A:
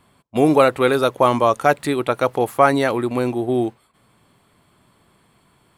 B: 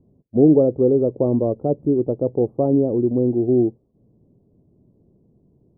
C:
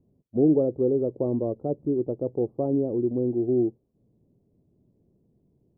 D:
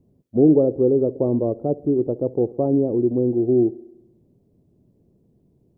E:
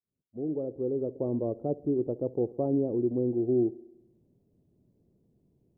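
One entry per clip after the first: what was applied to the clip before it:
inverse Chebyshev low-pass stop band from 1.6 kHz, stop band 60 dB; trim +3.5 dB
dynamic bell 350 Hz, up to +3 dB, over -29 dBFS, Q 3.4; trim -8 dB
feedback echo behind a band-pass 66 ms, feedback 62%, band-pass 420 Hz, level -20 dB; trim +5.5 dB
fade-in on the opening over 1.58 s; trim -8 dB

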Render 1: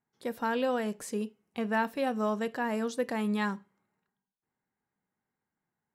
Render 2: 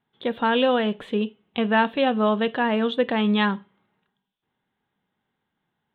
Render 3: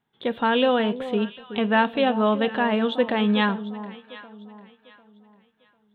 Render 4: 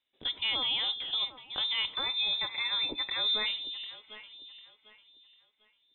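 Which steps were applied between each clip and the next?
FFT filter 2.2 kHz 0 dB, 3.5 kHz +11 dB, 5.1 kHz -29 dB; trim +9 dB
echo whose repeats swap between lows and highs 374 ms, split 1 kHz, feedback 55%, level -12 dB
spectral selection erased 1.94–3.46 s, 450–1100 Hz; peak limiter -15.5 dBFS, peak gain reduction 7.5 dB; frequency inversion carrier 3.8 kHz; trim -7 dB

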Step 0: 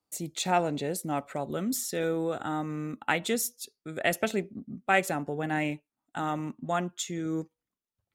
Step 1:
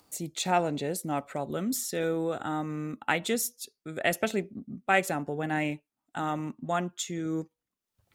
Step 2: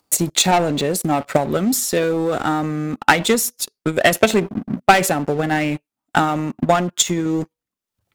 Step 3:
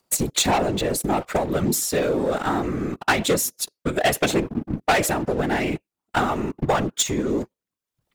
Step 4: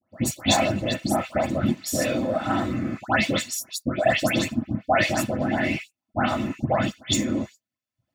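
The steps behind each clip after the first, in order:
upward compressor, threshold -49 dBFS
waveshaping leveller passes 3; transient shaper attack +12 dB, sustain +8 dB; trim -1 dB
whisper effect; saturation -9.5 dBFS, distortion -13 dB; trim -2.5 dB
comb of notches 470 Hz; phase dispersion highs, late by 148 ms, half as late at 2.2 kHz; reverberation, pre-delay 3 ms, DRR 7.5 dB; trim -6.5 dB

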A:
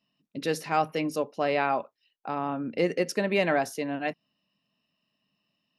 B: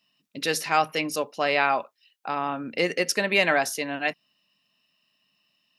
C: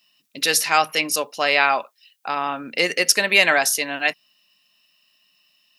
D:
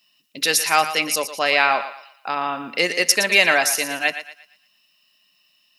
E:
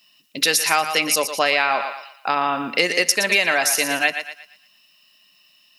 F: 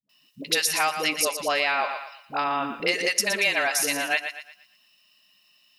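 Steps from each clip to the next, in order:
tilt shelf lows -6.5 dB, about 900 Hz; trim +3.5 dB
tilt EQ +2.5 dB/octave; trim +4 dB
thinning echo 116 ms, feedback 37%, high-pass 510 Hz, level -10.5 dB
compression 6:1, threshold -20 dBFS, peak gain reduction 10 dB; trim +5.5 dB
phase dispersion highs, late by 94 ms, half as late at 360 Hz; trim -5 dB

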